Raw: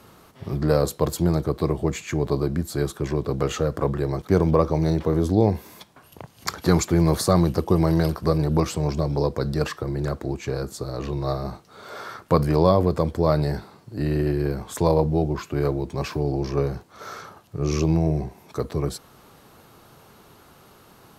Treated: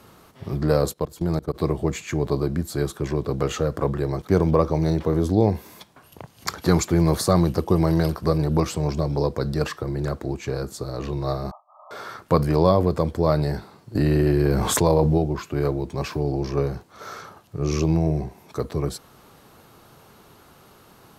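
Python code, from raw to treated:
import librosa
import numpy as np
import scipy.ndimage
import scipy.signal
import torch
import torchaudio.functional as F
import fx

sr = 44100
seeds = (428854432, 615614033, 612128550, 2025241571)

y = fx.level_steps(x, sr, step_db=22, at=(0.92, 1.54), fade=0.02)
y = fx.brickwall_bandpass(y, sr, low_hz=570.0, high_hz=1300.0, at=(11.51, 11.91))
y = fx.env_flatten(y, sr, amount_pct=70, at=(13.95, 15.18))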